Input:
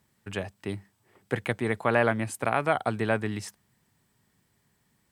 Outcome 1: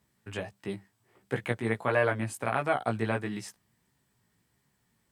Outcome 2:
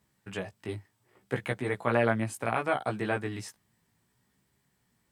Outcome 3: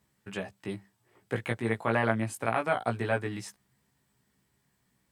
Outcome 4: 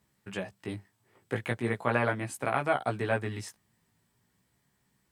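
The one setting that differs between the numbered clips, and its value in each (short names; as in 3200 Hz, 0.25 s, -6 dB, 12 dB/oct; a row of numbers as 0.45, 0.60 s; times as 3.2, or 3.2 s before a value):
chorus, rate: 1.5, 0.67, 0.24, 0.4 Hz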